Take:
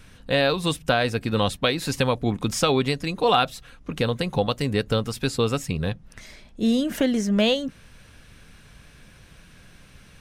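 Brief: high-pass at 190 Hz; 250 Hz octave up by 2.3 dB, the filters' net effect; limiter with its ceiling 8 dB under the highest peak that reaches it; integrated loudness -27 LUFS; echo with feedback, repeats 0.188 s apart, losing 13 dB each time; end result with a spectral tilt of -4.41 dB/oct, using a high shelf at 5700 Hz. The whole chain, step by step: HPF 190 Hz; bell 250 Hz +4.5 dB; high shelf 5700 Hz -7.5 dB; limiter -14 dBFS; feedback echo 0.188 s, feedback 22%, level -13 dB; gain -1.5 dB

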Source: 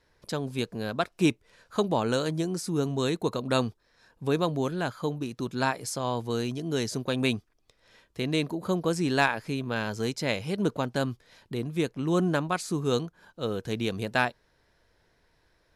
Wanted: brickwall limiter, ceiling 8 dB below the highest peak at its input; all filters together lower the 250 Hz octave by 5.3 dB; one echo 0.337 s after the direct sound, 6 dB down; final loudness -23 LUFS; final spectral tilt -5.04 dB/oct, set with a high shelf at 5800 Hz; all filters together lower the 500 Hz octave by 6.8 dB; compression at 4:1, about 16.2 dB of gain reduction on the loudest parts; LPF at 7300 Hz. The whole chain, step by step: LPF 7300 Hz; bell 250 Hz -5 dB; bell 500 Hz -7 dB; high shelf 5800 Hz -8 dB; compressor 4:1, threshold -42 dBFS; limiter -33.5 dBFS; echo 0.337 s -6 dB; gain +22 dB

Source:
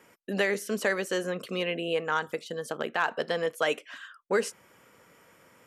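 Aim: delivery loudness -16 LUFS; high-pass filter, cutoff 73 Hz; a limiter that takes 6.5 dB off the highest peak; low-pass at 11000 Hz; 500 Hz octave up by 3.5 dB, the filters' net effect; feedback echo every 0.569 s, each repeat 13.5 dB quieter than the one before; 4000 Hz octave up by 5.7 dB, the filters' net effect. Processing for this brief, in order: HPF 73 Hz; LPF 11000 Hz; bell 500 Hz +4 dB; bell 4000 Hz +8.5 dB; limiter -16.5 dBFS; feedback echo 0.569 s, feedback 21%, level -13.5 dB; gain +13 dB

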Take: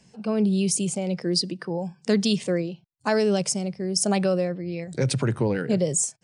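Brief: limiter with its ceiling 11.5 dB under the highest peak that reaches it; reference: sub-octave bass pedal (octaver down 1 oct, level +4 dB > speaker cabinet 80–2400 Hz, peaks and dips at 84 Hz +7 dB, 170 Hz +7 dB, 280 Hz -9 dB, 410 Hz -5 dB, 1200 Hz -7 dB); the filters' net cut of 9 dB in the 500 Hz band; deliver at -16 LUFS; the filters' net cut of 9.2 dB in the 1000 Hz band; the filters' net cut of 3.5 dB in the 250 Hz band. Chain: bell 250 Hz -7.5 dB; bell 500 Hz -3 dB; bell 1000 Hz -9 dB; limiter -22 dBFS; octaver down 1 oct, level +4 dB; speaker cabinet 80–2400 Hz, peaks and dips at 84 Hz +7 dB, 170 Hz +7 dB, 280 Hz -9 dB, 410 Hz -5 dB, 1200 Hz -7 dB; gain +12 dB

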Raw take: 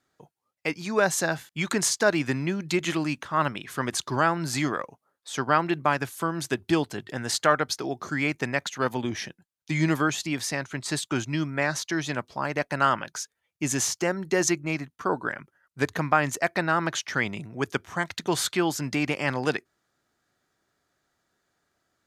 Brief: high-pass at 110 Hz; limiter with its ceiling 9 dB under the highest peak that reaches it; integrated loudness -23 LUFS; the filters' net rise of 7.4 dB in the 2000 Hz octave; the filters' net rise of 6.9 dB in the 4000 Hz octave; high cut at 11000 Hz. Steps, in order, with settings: HPF 110 Hz; LPF 11000 Hz; bell 2000 Hz +8 dB; bell 4000 Hz +6.5 dB; gain +2 dB; limiter -9 dBFS

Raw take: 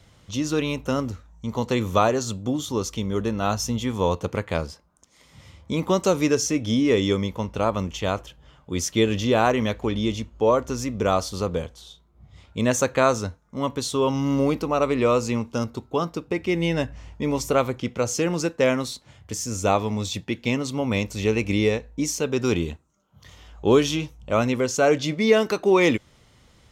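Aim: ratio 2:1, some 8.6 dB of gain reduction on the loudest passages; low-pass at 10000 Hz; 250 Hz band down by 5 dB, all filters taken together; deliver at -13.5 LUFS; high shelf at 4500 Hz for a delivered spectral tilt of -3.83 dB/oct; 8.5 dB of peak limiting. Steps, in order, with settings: LPF 10000 Hz; bell 250 Hz -6.5 dB; high shelf 4500 Hz +8 dB; compressor 2:1, threshold -30 dBFS; gain +19 dB; limiter -2.5 dBFS

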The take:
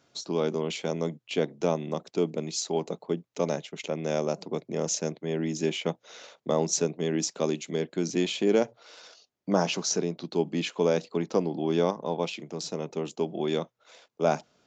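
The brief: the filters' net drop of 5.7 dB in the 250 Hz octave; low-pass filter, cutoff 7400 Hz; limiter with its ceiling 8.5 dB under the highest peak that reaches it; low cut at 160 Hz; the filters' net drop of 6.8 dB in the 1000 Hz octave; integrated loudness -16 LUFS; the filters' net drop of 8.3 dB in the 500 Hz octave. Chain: HPF 160 Hz; LPF 7400 Hz; bell 250 Hz -3.5 dB; bell 500 Hz -8 dB; bell 1000 Hz -5.5 dB; gain +20.5 dB; limiter -2.5 dBFS

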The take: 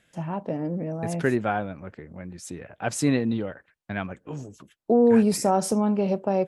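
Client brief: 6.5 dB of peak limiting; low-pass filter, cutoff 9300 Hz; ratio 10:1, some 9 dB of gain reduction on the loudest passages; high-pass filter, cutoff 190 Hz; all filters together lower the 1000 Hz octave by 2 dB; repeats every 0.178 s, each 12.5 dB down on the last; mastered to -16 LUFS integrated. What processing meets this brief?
HPF 190 Hz; LPF 9300 Hz; bell 1000 Hz -3 dB; compressor 10:1, threshold -24 dBFS; limiter -22 dBFS; feedback echo 0.178 s, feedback 24%, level -12.5 dB; gain +16.5 dB

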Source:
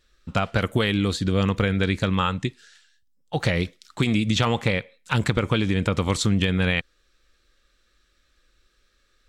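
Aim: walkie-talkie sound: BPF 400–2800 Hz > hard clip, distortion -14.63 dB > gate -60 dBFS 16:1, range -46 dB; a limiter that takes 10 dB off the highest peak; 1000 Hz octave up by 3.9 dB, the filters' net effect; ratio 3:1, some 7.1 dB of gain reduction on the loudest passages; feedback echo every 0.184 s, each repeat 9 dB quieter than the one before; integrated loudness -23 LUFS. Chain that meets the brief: bell 1000 Hz +5.5 dB; compressor 3:1, threshold -26 dBFS; limiter -21 dBFS; BPF 400–2800 Hz; feedback echo 0.184 s, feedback 35%, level -9 dB; hard clip -28 dBFS; gate -60 dBFS 16:1, range -46 dB; gain +14.5 dB

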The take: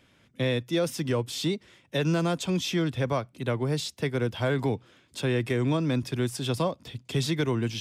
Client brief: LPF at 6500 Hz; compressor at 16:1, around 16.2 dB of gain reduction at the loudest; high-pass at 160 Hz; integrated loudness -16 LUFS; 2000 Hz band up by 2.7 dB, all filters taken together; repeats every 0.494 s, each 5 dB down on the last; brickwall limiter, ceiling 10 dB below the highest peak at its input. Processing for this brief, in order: HPF 160 Hz; LPF 6500 Hz; bell 2000 Hz +3.5 dB; compressor 16:1, threshold -39 dBFS; limiter -35 dBFS; feedback echo 0.494 s, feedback 56%, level -5 dB; gain +27.5 dB

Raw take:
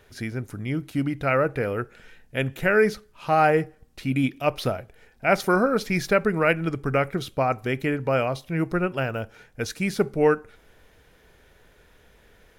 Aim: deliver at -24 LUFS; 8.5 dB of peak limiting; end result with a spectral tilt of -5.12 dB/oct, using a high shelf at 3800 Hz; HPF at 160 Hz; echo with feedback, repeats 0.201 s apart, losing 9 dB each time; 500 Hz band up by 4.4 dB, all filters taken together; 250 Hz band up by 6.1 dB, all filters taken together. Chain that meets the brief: HPF 160 Hz; bell 250 Hz +8 dB; bell 500 Hz +3 dB; high shelf 3800 Hz +7 dB; limiter -11 dBFS; feedback echo 0.201 s, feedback 35%, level -9 dB; gain -1 dB

